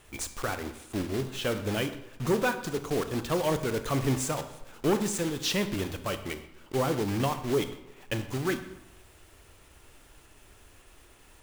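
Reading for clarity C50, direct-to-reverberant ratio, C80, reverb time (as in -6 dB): 11.0 dB, 9.5 dB, 13.0 dB, 0.95 s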